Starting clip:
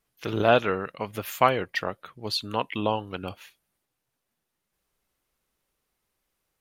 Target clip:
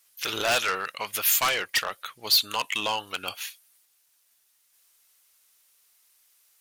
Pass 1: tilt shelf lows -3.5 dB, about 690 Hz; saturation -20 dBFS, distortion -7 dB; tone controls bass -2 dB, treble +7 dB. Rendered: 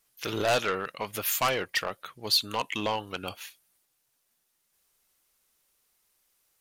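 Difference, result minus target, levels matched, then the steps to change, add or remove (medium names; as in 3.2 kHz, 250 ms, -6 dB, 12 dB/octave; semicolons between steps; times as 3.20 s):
500 Hz band +6.5 dB
change: tilt shelf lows -12 dB, about 690 Hz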